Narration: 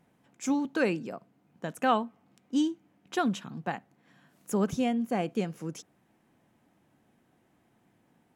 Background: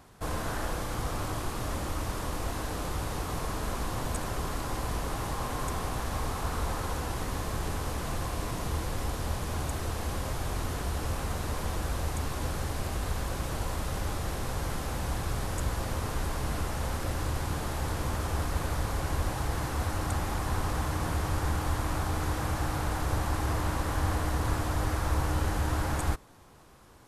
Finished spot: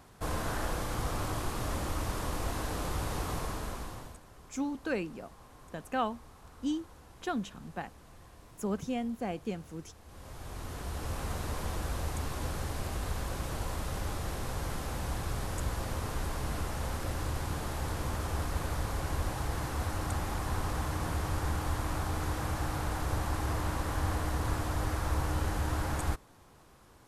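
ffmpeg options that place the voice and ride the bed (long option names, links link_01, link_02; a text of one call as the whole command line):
ffmpeg -i stem1.wav -i stem2.wav -filter_complex "[0:a]adelay=4100,volume=-6dB[link_01];[1:a]volume=17.5dB,afade=type=out:start_time=3.28:duration=0.92:silence=0.0944061,afade=type=in:start_time=10.05:duration=1.25:silence=0.11885[link_02];[link_01][link_02]amix=inputs=2:normalize=0" out.wav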